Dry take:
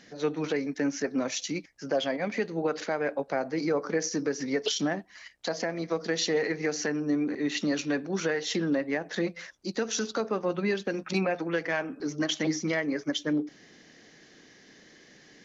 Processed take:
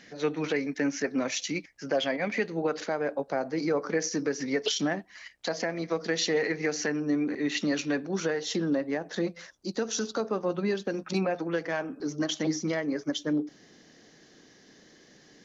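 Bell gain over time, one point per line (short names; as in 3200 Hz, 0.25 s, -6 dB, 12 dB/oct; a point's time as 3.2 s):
bell 2200 Hz 0.94 oct
2.43 s +4.5 dB
3.15 s -7 dB
3.85 s +2 dB
7.78 s +2 dB
8.41 s -6 dB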